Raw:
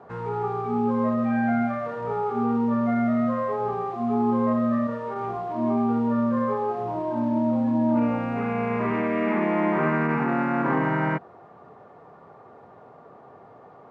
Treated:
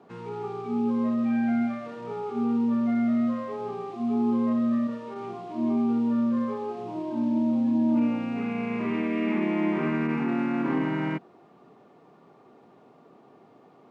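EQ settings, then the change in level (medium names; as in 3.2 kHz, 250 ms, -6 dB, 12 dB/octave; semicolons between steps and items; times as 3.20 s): high-pass 230 Hz 12 dB/octave; high-order bell 920 Hz -11.5 dB 2.4 oct; +2.5 dB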